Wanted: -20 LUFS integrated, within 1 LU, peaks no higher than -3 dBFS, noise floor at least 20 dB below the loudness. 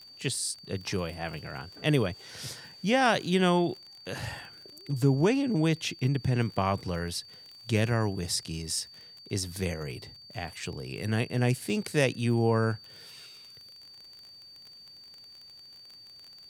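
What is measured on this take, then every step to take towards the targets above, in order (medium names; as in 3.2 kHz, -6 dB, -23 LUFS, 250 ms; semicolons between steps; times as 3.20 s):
tick rate 29 per s; steady tone 4.6 kHz; tone level -48 dBFS; loudness -29.5 LUFS; peak level -10.5 dBFS; loudness target -20.0 LUFS
-> de-click; band-stop 4.6 kHz, Q 30; trim +9.5 dB; peak limiter -3 dBFS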